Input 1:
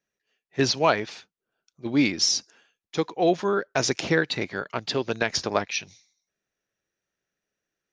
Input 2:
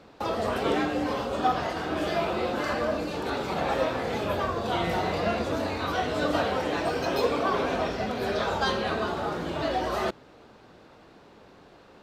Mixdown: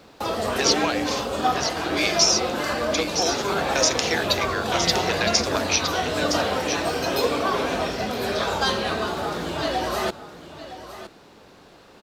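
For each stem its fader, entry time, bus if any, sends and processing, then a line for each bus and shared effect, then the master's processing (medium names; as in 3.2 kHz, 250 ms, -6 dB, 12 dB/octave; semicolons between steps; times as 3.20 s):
+1.5 dB, 0.00 s, no send, echo send -7.5 dB, steep high-pass 340 Hz; tilt EQ +2 dB/octave; compression, threshold -25 dBFS, peak gain reduction 11 dB
+2.0 dB, 0.00 s, no send, echo send -13.5 dB, none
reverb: none
echo: delay 964 ms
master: treble shelf 4.1 kHz +10.5 dB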